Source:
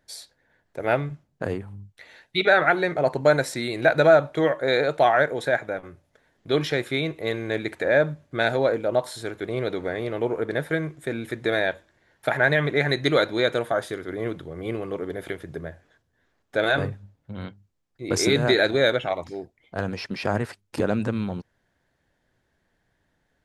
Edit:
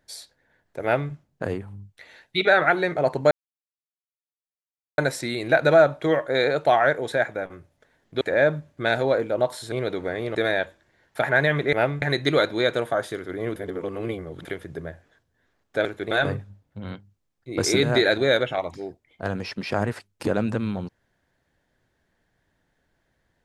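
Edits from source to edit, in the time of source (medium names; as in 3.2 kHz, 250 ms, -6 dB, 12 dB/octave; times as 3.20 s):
0.83–1.12 s: copy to 12.81 s
3.31 s: insert silence 1.67 s
6.54–7.75 s: delete
9.26–9.52 s: move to 16.64 s
10.15–11.43 s: delete
14.35–15.24 s: reverse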